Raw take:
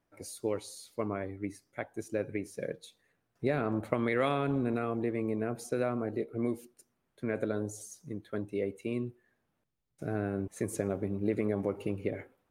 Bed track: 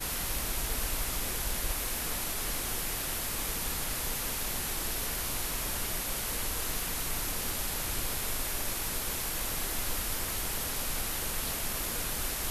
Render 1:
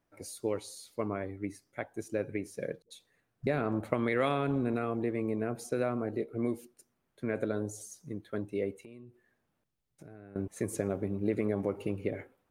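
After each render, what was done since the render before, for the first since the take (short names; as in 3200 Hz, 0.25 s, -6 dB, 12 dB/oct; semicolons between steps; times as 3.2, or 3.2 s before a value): 2.82–3.47 dispersion highs, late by 84 ms, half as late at 420 Hz; 8.73–10.36 compressor 5:1, threshold -48 dBFS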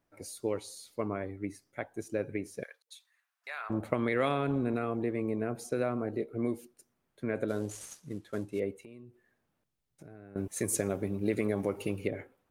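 2.63–3.7 HPF 980 Hz 24 dB/oct; 7.48–8.6 CVSD 64 kbps; 10.37–12.08 high shelf 2600 Hz +11.5 dB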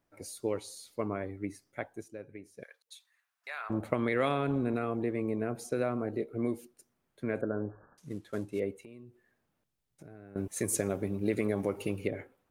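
1.86–2.82 dip -11.5 dB, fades 0.26 s; 7.41–7.98 Chebyshev low-pass 1700 Hz, order 10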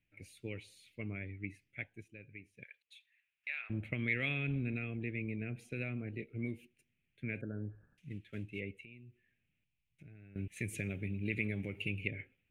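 EQ curve 130 Hz 0 dB, 1100 Hz -25 dB, 2500 Hz +10 dB, 4800 Hz -17 dB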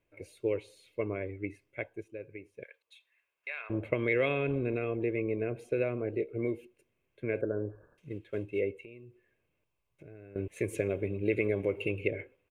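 band shelf 610 Hz +15 dB 2.5 oct; comb 1.9 ms, depth 43%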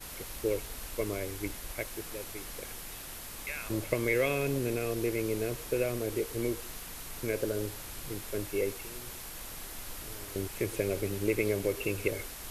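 add bed track -9.5 dB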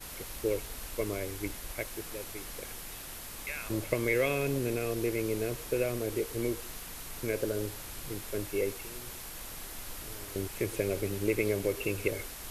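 nothing audible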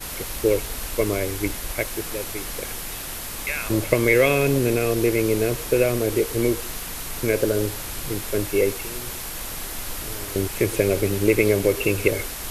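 gain +11 dB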